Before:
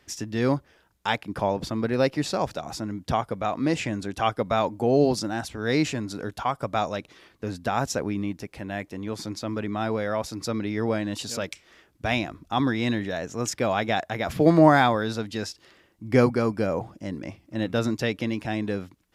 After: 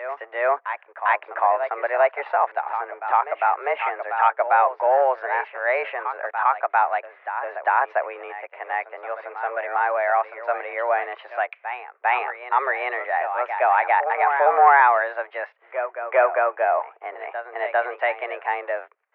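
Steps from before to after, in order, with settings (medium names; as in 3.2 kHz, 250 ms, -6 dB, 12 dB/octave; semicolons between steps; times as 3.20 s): waveshaping leveller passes 1; mistuned SSB +130 Hz 500–2100 Hz; reverse echo 400 ms -10.5 dB; in parallel at -1.5 dB: peak limiter -16.5 dBFS, peak gain reduction 12.5 dB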